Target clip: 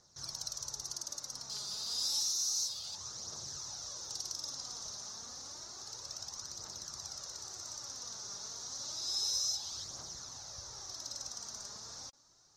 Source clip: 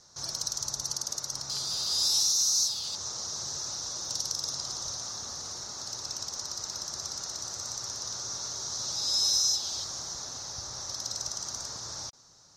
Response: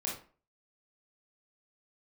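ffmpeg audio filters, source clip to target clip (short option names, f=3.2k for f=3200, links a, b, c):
-af "aphaser=in_gain=1:out_gain=1:delay=5:decay=0.4:speed=0.3:type=triangular,volume=-9dB"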